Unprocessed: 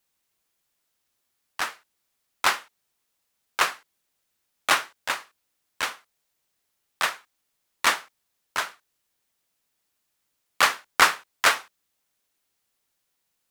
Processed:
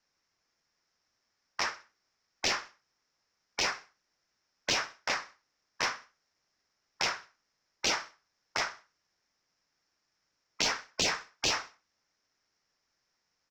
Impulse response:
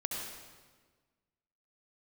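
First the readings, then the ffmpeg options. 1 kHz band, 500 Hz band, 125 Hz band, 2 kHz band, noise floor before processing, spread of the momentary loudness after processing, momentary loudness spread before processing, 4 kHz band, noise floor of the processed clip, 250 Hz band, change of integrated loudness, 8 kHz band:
−11.0 dB, −4.0 dB, +3.0 dB, −9.0 dB, −77 dBFS, 13 LU, 12 LU, −3.5 dB, −81 dBFS, −0.5 dB, −7.0 dB, −4.0 dB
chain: -filter_complex "[0:a]lowpass=frequency=5400:width_type=q:width=7.9,aresample=16000,acrusher=bits=3:mode=log:mix=0:aa=0.000001,aresample=44100,highshelf=frequency=2500:width_type=q:width=1.5:gain=-8,afftfilt=real='re*lt(hypot(re,im),0.178)':imag='im*lt(hypot(re,im),0.178)':win_size=1024:overlap=0.75,asplit=2[link_01][link_02];[link_02]asoftclip=type=hard:threshold=-27.5dB,volume=-11dB[link_03];[link_01][link_03]amix=inputs=2:normalize=0,aecho=1:1:63|126|189:0.119|0.0464|0.0181,volume=-2.5dB"

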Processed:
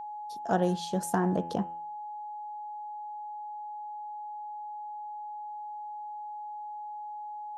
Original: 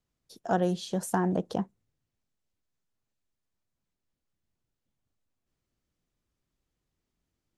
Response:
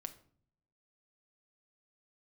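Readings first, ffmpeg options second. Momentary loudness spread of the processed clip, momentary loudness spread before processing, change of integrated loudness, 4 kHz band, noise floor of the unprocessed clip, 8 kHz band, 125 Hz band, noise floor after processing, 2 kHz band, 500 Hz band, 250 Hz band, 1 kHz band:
12 LU, 10 LU, −5.5 dB, can't be measured, −85 dBFS, 0.0 dB, 0.0 dB, −40 dBFS, 0.0 dB, 0.0 dB, 0.0 dB, +6.0 dB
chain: -af "bandreject=frequency=84.7:width_type=h:width=4,bandreject=frequency=169.4:width_type=h:width=4,bandreject=frequency=254.1:width_type=h:width=4,bandreject=frequency=338.8:width_type=h:width=4,bandreject=frequency=423.5:width_type=h:width=4,bandreject=frequency=508.2:width_type=h:width=4,bandreject=frequency=592.9:width_type=h:width=4,bandreject=frequency=677.6:width_type=h:width=4,bandreject=frequency=762.3:width_type=h:width=4,bandreject=frequency=847:width_type=h:width=4,bandreject=frequency=931.7:width_type=h:width=4,bandreject=frequency=1016.4:width_type=h:width=4,bandreject=frequency=1101.1:width_type=h:width=4,bandreject=frequency=1185.8:width_type=h:width=4,bandreject=frequency=1270.5:width_type=h:width=4,bandreject=frequency=1355.2:width_type=h:width=4,bandreject=frequency=1439.9:width_type=h:width=4,bandreject=frequency=1524.6:width_type=h:width=4,bandreject=frequency=1609.3:width_type=h:width=4,bandreject=frequency=1694:width_type=h:width=4,bandreject=frequency=1778.7:width_type=h:width=4,bandreject=frequency=1863.4:width_type=h:width=4,bandreject=frequency=1948.1:width_type=h:width=4,bandreject=frequency=2032.8:width_type=h:width=4,bandreject=frequency=2117.5:width_type=h:width=4,bandreject=frequency=2202.2:width_type=h:width=4,bandreject=frequency=2286.9:width_type=h:width=4,bandreject=frequency=2371.6:width_type=h:width=4,bandreject=frequency=2456.3:width_type=h:width=4,bandreject=frequency=2541:width_type=h:width=4,bandreject=frequency=2625.7:width_type=h:width=4,bandreject=frequency=2710.4:width_type=h:width=4,bandreject=frequency=2795.1:width_type=h:width=4,bandreject=frequency=2879.8:width_type=h:width=4,bandreject=frequency=2964.5:width_type=h:width=4,bandreject=frequency=3049.2:width_type=h:width=4,bandreject=frequency=3133.9:width_type=h:width=4,aeval=exprs='val(0)+0.0141*sin(2*PI*840*n/s)':channel_layout=same"

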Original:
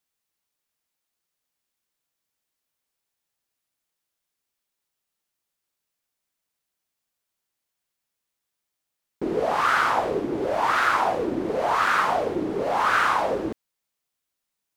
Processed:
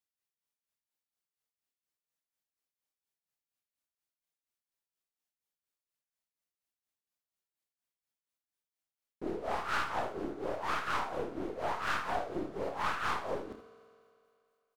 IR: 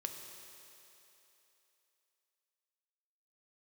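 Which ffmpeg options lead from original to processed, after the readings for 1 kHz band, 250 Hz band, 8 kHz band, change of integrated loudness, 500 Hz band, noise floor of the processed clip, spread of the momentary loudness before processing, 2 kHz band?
−13.5 dB, −12.0 dB, −11.5 dB, −13.0 dB, −12.5 dB, below −85 dBFS, 7 LU, −13.0 dB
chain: -filter_complex "[0:a]tremolo=f=4.2:d=0.8,aeval=exprs='(tanh(11.2*val(0)+0.6)-tanh(0.6))/11.2':channel_layout=same,aecho=1:1:29|79:0.376|0.282,asplit=2[link_01][link_02];[1:a]atrim=start_sample=2205,asetrate=52920,aresample=44100,adelay=65[link_03];[link_02][link_03]afir=irnorm=-1:irlink=0,volume=-11dB[link_04];[link_01][link_04]amix=inputs=2:normalize=0,volume=-6.5dB"

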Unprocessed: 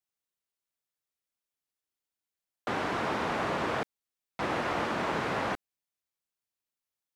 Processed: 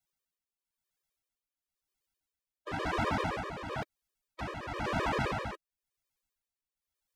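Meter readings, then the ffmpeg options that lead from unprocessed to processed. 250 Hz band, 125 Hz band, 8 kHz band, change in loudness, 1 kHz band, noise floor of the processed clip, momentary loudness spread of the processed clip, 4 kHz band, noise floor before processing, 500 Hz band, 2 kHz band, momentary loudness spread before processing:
−3.0 dB, +2.0 dB, −3.5 dB, −3.0 dB, −3.5 dB, below −85 dBFS, 12 LU, −3.5 dB, below −85 dBFS, −4.5 dB, −3.5 dB, 9 LU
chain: -filter_complex "[0:a]acrossover=split=140[link_01][link_02];[link_01]acontrast=55[link_03];[link_02]alimiter=level_in=2.5dB:limit=-24dB:level=0:latency=1:release=29,volume=-2.5dB[link_04];[link_03][link_04]amix=inputs=2:normalize=0,asubboost=boost=3:cutoff=62,tremolo=f=0.98:d=0.7,afftfilt=real='re*gt(sin(2*PI*7.7*pts/sr)*(1-2*mod(floor(b*sr/1024/320),2)),0)':imag='im*gt(sin(2*PI*7.7*pts/sr)*(1-2*mod(floor(b*sr/1024/320),2)),0)':win_size=1024:overlap=0.75,volume=7dB"

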